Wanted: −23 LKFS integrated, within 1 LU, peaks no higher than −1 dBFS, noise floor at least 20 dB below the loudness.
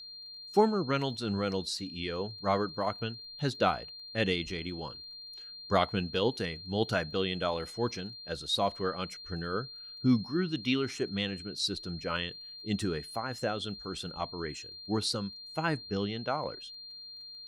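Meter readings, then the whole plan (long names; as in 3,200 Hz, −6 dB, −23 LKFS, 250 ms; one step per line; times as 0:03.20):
crackle rate 22 per second; interfering tone 4,200 Hz; level of the tone −44 dBFS; integrated loudness −32.5 LKFS; sample peak −12.0 dBFS; target loudness −23.0 LKFS
→ click removal
notch filter 4,200 Hz, Q 30
level +9.5 dB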